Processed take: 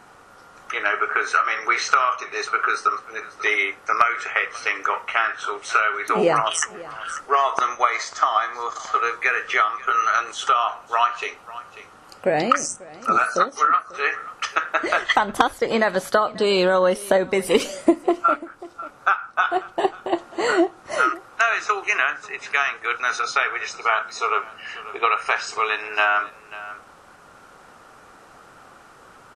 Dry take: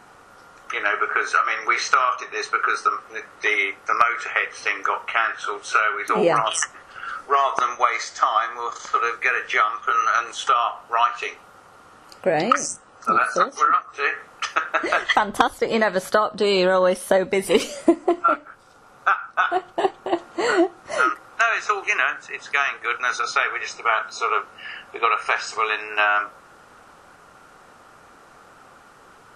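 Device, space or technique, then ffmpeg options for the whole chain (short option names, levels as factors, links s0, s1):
ducked delay: -filter_complex "[0:a]asplit=3[s0][s1][s2];[s1]adelay=541,volume=0.531[s3];[s2]apad=whole_len=1318237[s4];[s3][s4]sidechaincompress=threshold=0.0224:ratio=4:attack=6.6:release=967[s5];[s0][s5]amix=inputs=2:normalize=0"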